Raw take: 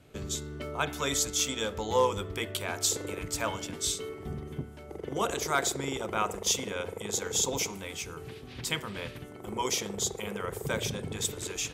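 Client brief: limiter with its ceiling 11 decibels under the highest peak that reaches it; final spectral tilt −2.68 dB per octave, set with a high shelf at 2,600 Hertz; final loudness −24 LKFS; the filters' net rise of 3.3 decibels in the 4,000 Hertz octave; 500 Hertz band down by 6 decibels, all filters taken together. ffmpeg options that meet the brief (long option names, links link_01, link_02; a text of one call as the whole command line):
ffmpeg -i in.wav -af "equalizer=frequency=500:width_type=o:gain=-7,highshelf=frequency=2600:gain=-4.5,equalizer=frequency=4000:width_type=o:gain=8,volume=11.5dB,alimiter=limit=-12dB:level=0:latency=1" out.wav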